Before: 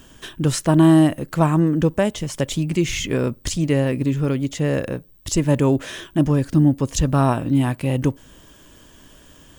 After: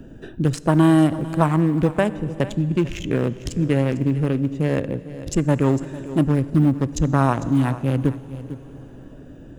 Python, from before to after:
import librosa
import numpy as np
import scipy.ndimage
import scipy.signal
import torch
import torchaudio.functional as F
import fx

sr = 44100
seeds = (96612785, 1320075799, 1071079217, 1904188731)

p1 = fx.wiener(x, sr, points=41)
p2 = p1 + fx.echo_single(p1, sr, ms=450, db=-17.5, dry=0)
p3 = fx.rev_plate(p2, sr, seeds[0], rt60_s=3.0, hf_ratio=0.9, predelay_ms=0, drr_db=15.5)
p4 = fx.dynamic_eq(p3, sr, hz=1400.0, q=0.77, threshold_db=-34.0, ratio=4.0, max_db=5)
p5 = fx.band_squash(p4, sr, depth_pct=40)
y = F.gain(torch.from_numpy(p5), -1.0).numpy()